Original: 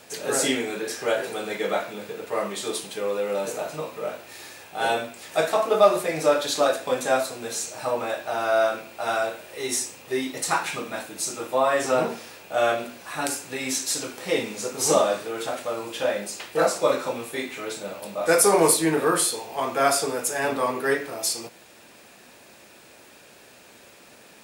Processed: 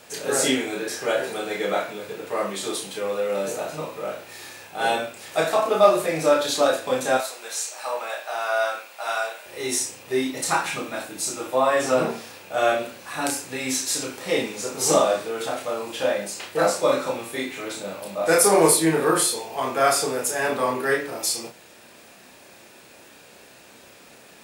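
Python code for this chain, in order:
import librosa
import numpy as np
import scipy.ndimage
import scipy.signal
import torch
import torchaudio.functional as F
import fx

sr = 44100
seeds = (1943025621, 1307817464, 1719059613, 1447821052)

y = fx.highpass(x, sr, hz=740.0, slope=12, at=(7.17, 9.46))
y = fx.doubler(y, sr, ms=31.0, db=-4.0)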